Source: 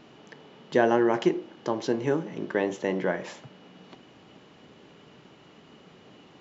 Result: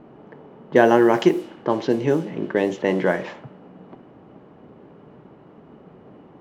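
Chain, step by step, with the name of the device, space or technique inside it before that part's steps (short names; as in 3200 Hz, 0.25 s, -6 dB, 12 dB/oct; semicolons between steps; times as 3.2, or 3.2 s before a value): 1.83–2.78 dynamic EQ 1200 Hz, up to -6 dB, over -41 dBFS, Q 0.9; cassette deck with a dynamic noise filter (white noise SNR 29 dB; low-pass opened by the level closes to 870 Hz, open at -20.5 dBFS); gain +7 dB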